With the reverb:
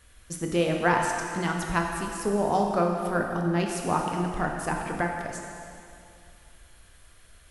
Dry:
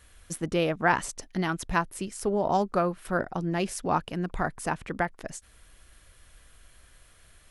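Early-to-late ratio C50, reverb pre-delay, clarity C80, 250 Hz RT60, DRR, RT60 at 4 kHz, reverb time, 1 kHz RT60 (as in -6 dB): 2.5 dB, 7 ms, 3.5 dB, 2.5 s, 1.0 dB, 2.3 s, 2.5 s, 2.5 s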